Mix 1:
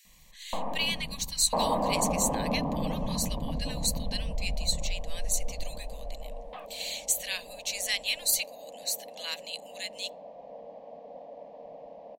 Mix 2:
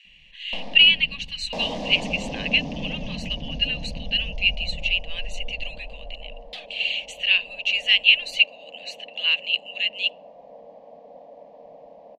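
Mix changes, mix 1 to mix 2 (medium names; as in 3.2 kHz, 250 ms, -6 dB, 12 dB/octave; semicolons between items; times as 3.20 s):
speech: add resonant low-pass 2.8 kHz, resonance Q 14; first sound: remove resonant low-pass 1.1 kHz, resonance Q 5.1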